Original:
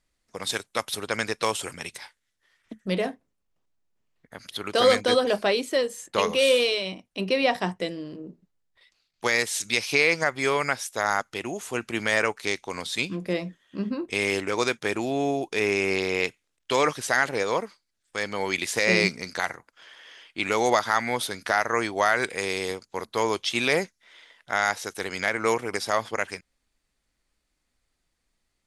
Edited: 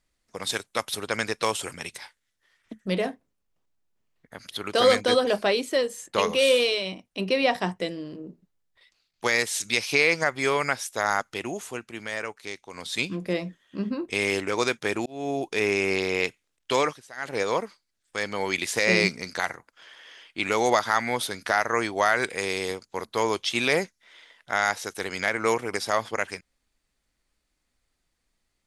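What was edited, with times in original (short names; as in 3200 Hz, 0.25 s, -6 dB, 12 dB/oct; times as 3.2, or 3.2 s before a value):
11.59–12.96 dip -9 dB, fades 0.24 s
15.06–15.4 fade in
16.78–17.4 dip -20 dB, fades 0.24 s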